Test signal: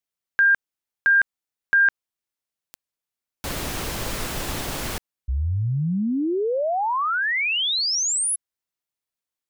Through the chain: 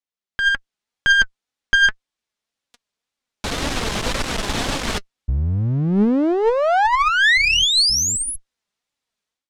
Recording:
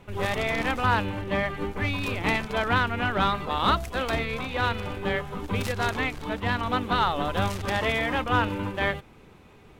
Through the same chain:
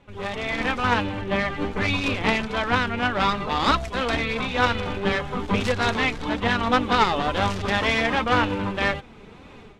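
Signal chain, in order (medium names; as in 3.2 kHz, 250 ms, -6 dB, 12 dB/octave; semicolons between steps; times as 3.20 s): level rider gain up to 14 dB; peaking EQ 3.6 kHz +2 dB 0.36 oct; flange 1.9 Hz, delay 3.4 ms, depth 1.6 ms, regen +51%; one-sided clip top -24.5 dBFS; low-pass 6.9 kHz 12 dB/octave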